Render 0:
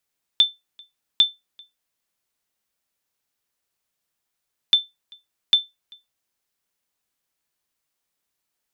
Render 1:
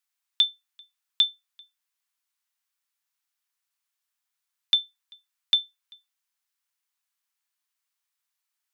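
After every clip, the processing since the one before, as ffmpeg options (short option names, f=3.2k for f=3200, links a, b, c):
-af "highpass=f=910:w=0.5412,highpass=f=910:w=1.3066,volume=-3.5dB"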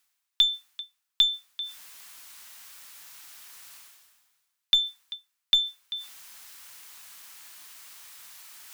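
-af "aeval=exprs='0.355*(cos(1*acos(clip(val(0)/0.355,-1,1)))-cos(1*PI/2))+0.00891*(cos(8*acos(clip(val(0)/0.355,-1,1)))-cos(8*PI/2))':c=same,areverse,acompressor=mode=upward:threshold=-20dB:ratio=2.5,areverse"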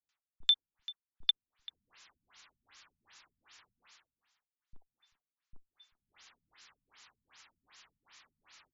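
-filter_complex "[0:a]acrossover=split=190|570[a][b][c];[b]adelay=30[d];[c]adelay=90[e];[a][d][e]amix=inputs=3:normalize=0,afftfilt=real='re*lt(b*sr/1024,230*pow(7600/230,0.5+0.5*sin(2*PI*2.6*pts/sr)))':imag='im*lt(b*sr/1024,230*pow(7600/230,0.5+0.5*sin(2*PI*2.6*pts/sr)))':win_size=1024:overlap=0.75,volume=-5dB"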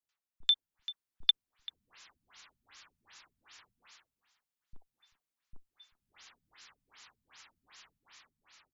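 -af "dynaudnorm=f=100:g=13:m=5dB,volume=-2dB"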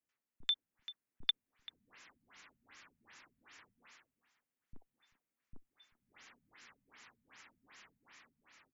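-af "equalizer=f=125:t=o:w=1:g=4,equalizer=f=250:t=o:w=1:g=11,equalizer=f=500:t=o:w=1:g=5,equalizer=f=2k:t=o:w=1:g=6,equalizer=f=4k:t=o:w=1:g=-6,volume=-3.5dB"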